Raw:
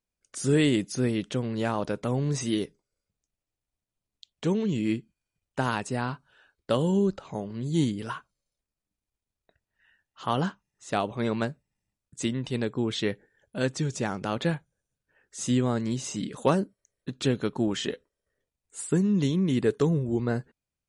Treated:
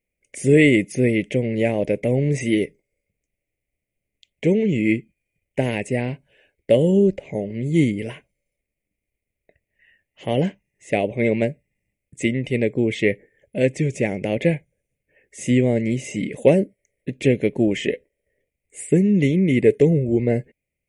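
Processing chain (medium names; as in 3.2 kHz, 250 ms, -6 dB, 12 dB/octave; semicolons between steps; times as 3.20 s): FFT filter 250 Hz 0 dB, 580 Hz +5 dB, 1.3 kHz -29 dB, 2.1 kHz +12 dB, 4 kHz -15 dB, 10 kHz -2 dB; trim +6.5 dB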